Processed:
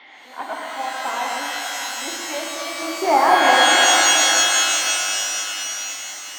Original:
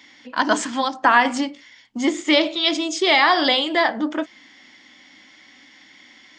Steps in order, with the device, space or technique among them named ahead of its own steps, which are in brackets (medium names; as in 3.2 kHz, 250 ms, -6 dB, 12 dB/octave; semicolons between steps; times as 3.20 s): digital answering machine (band-pass 310–3400 Hz; one-bit delta coder 32 kbps, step -28.5 dBFS; cabinet simulation 420–3100 Hz, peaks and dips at 460 Hz -6 dB, 780 Hz +6 dB, 1.2 kHz -5 dB, 1.7 kHz -5 dB, 2.5 kHz -5 dB); 2.82–3.76 s: graphic EQ 125/250/500/1000/2000/4000 Hz +12/+9/+7/+10/+5/-11 dB; pitch-shifted reverb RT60 3.9 s, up +12 st, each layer -2 dB, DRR -2 dB; trim -8 dB